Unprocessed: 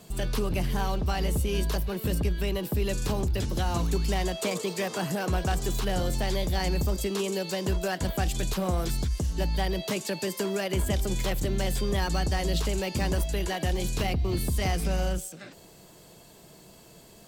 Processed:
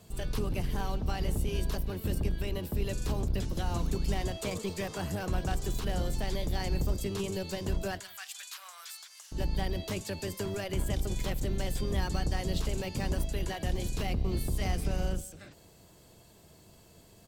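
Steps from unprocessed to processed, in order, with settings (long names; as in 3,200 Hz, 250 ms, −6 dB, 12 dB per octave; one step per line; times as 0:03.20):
sub-octave generator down 1 octave, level +1 dB
0:08.00–0:09.32: high-pass filter 1,200 Hz 24 dB per octave
single-tap delay 169 ms −23.5 dB
level −6.5 dB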